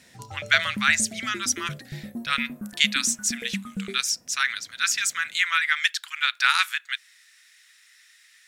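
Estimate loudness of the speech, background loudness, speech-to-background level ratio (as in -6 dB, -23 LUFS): -24.0 LUFS, -37.0 LUFS, 13.0 dB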